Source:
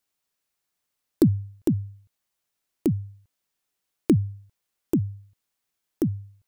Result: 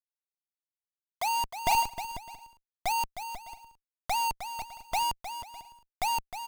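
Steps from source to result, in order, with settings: band inversion scrambler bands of 1000 Hz; high shelf 8400 Hz +2.5 dB; notches 60/120/180 Hz; in parallel at -2 dB: limiter -16.5 dBFS, peak gain reduction 9.5 dB; on the sum: wow and flutter 24 cents; Schmitt trigger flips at -28.5 dBFS; on a send: bouncing-ball echo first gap 0.31 s, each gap 0.6×, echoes 5; on the sum: upward expander 2.5:1, over -35 dBFS; gain +1 dB

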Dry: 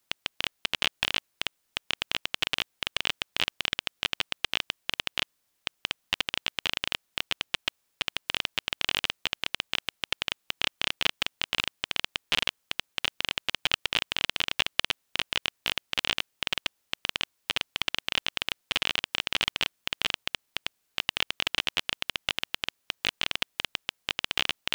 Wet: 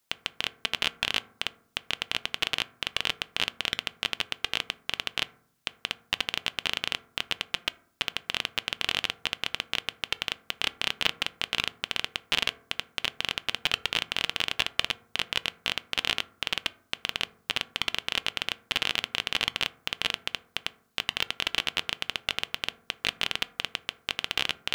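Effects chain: reverb RT60 0.60 s, pre-delay 3 ms, DRR 14 dB

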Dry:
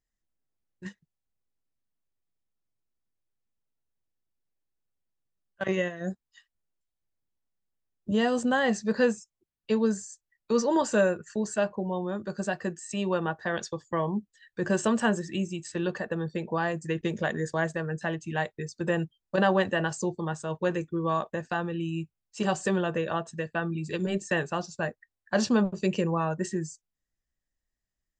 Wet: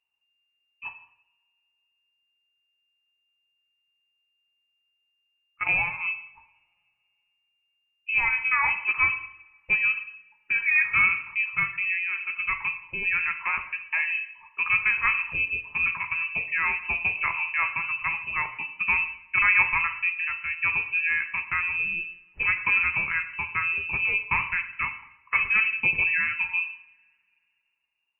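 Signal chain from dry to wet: inverted band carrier 2800 Hz; two-slope reverb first 0.71 s, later 2.6 s, from -27 dB, DRR 6.5 dB; gain +1.5 dB

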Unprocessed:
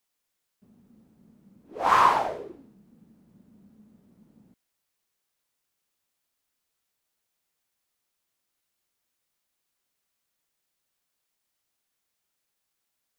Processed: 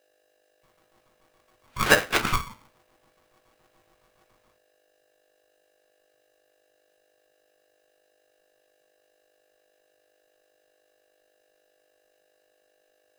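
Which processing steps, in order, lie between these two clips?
LFO high-pass square 7.1 Hz 580–1900 Hz; 1.94–2.36 negative-ratio compressor -30 dBFS, ratio -0.5; reverb RT60 0.30 s, pre-delay 5 ms, DRR 2 dB; hum 50 Hz, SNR 33 dB; polarity switched at an audio rate 560 Hz

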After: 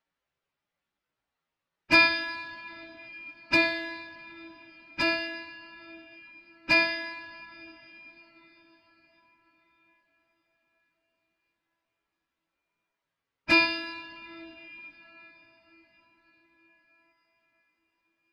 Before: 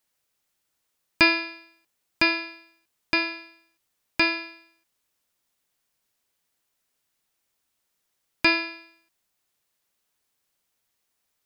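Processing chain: two-slope reverb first 0.49 s, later 4.6 s, from -17 dB, DRR 4.5 dB; plain phase-vocoder stretch 1.6×; low-pass opened by the level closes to 2600 Hz, open at -26.5 dBFS

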